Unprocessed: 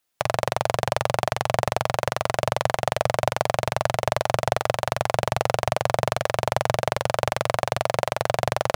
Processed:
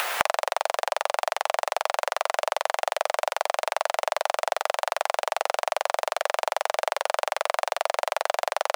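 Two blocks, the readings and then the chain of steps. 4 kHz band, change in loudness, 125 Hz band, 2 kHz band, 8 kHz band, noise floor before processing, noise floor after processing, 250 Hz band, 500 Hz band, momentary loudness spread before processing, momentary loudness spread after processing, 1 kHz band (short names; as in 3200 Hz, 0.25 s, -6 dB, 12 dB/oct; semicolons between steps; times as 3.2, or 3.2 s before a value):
-0.5 dB, -2.0 dB, under -30 dB, 0.0 dB, -0.5 dB, -56 dBFS, -70 dBFS, under -20 dB, -3.0 dB, 1 LU, 0 LU, -0.5 dB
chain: HPF 560 Hz 24 dB/oct; upward compressor, threshold -33 dBFS; limiter -12 dBFS, peak gain reduction 7.5 dB; three-band squash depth 100%; gain +4.5 dB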